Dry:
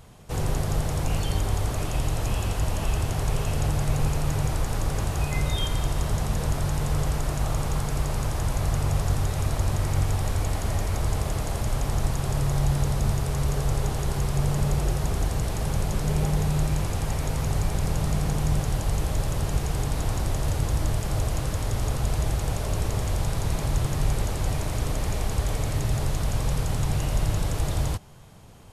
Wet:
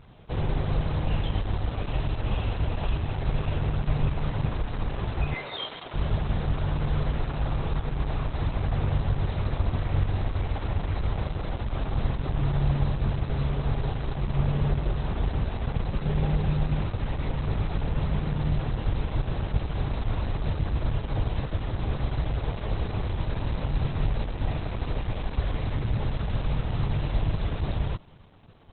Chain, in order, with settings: 5.34–5.94 HPF 410 Hz 12 dB/oct; Opus 8 kbps 48000 Hz

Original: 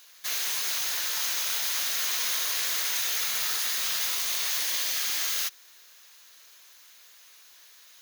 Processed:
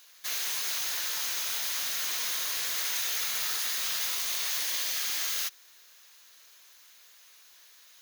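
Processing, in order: 1.15–2.77 hard clip -24 dBFS, distortion -20 dB; gain -2.5 dB

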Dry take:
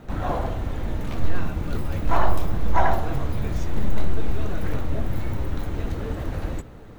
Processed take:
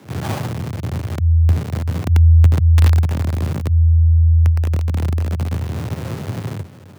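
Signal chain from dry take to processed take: half-waves squared off; frequency shift +82 Hz; gain -3.5 dB

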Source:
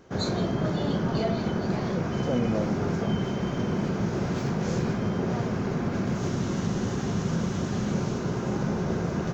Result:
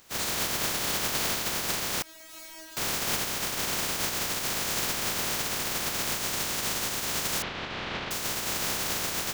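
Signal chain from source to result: spectral contrast lowered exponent 0.14; 2.02–2.77 resonator 320 Hz, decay 0.55 s, mix 100%; 7.42–8.11 LPF 3600 Hz 24 dB/oct; gain -2.5 dB

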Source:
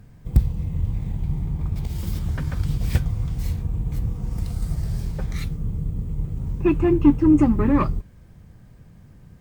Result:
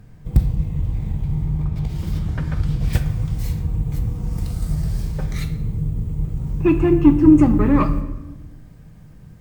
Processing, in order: high shelf 6600 Hz -2.5 dB, from 1.64 s -11 dB, from 2.93 s +2 dB; shoebox room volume 540 m³, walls mixed, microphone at 0.53 m; gain +2 dB

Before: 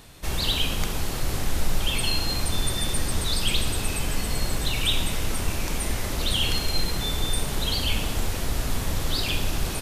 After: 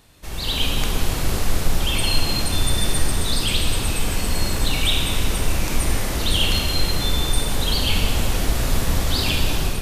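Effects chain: AGC gain up to 11.5 dB; reverb RT60 2.4 s, pre-delay 28 ms, DRR 3 dB; gain -6 dB

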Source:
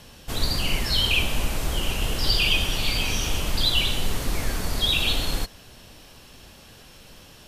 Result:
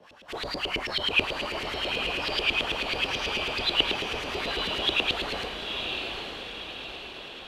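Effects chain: chorus voices 6, 0.93 Hz, delay 30 ms, depth 3 ms; frequency shift +15 Hz; LFO band-pass saw up 9.2 Hz 350–3000 Hz; on a send: diffused feedback echo 0.922 s, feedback 52%, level -5 dB; on the sum: gain +9 dB

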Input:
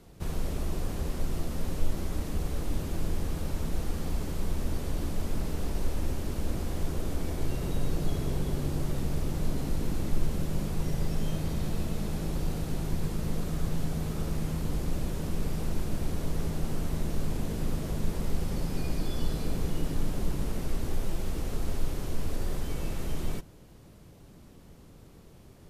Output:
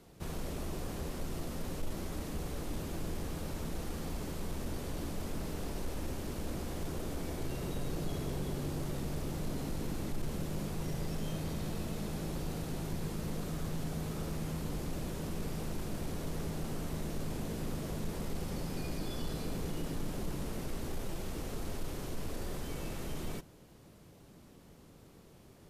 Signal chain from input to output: low shelf 94 Hz -9 dB; soft clip -24 dBFS, distortion -22 dB; gain -2 dB

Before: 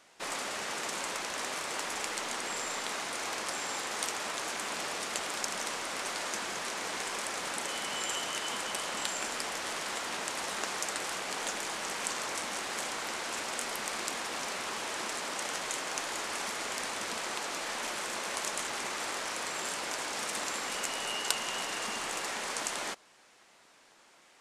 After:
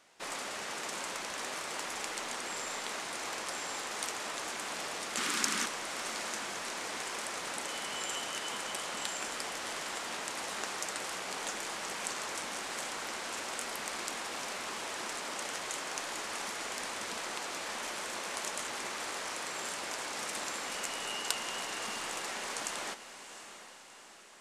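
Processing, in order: 5.17–5.66 EQ curve 110 Hz 0 dB, 250 Hz +13 dB, 660 Hz -5 dB, 1200 Hz +7 dB; diffused feedback echo 0.709 s, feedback 54%, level -12 dB; gain -3 dB

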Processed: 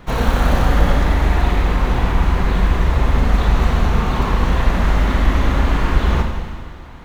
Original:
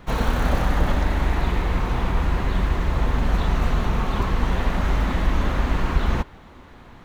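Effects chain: Schroeder reverb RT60 1.8 s, combs from 32 ms, DRR 2.5 dB; gain +3.5 dB

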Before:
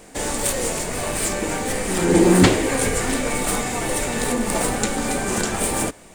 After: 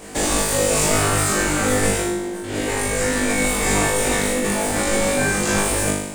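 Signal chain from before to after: 0.91–1.69 bell 1300 Hz +11 dB 0.26 oct; negative-ratio compressor -26 dBFS, ratio -1; flutter echo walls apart 3.4 m, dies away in 0.85 s

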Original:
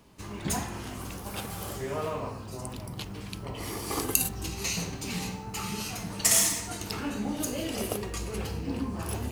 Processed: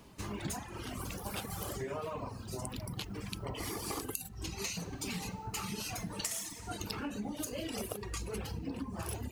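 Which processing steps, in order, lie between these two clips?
reverb removal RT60 1.2 s; compressor 12:1, threshold -37 dBFS, peak gain reduction 19.5 dB; gain +2 dB

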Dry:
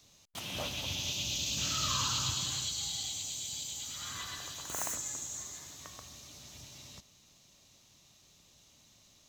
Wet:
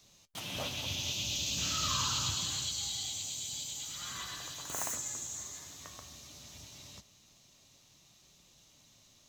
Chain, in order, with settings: flange 0.24 Hz, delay 5.1 ms, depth 7.7 ms, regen -60%; gain +4 dB

